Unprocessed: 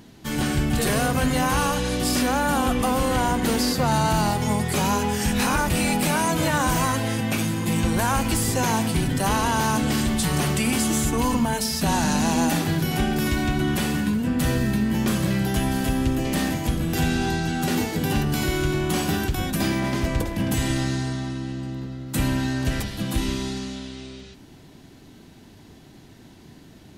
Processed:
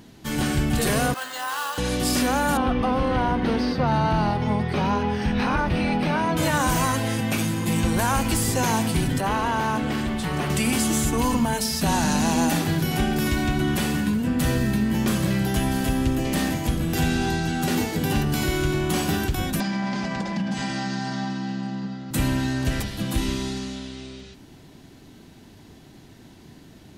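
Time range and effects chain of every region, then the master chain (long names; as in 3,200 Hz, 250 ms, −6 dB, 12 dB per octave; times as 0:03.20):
0:01.14–0:01.78: high-pass filter 1,100 Hz + parametric band 2,300 Hz −11.5 dB 0.35 octaves + bad sample-rate conversion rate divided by 4×, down filtered, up hold
0:02.57–0:06.37: Savitzky-Golay smoothing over 15 samples + high-shelf EQ 3,800 Hz −10.5 dB
0:09.20–0:10.50: mu-law and A-law mismatch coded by A + bass and treble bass −4 dB, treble −13 dB
0:19.60–0:22.11: loudspeaker in its box 160–7,000 Hz, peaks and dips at 190 Hz +10 dB, 370 Hz −7 dB, 810 Hz +7 dB, 1,600 Hz +4 dB, 4,800 Hz +6 dB + downward compressor 10 to 1, threshold −24 dBFS + comb filter 5.1 ms, depth 45%
whole clip: no processing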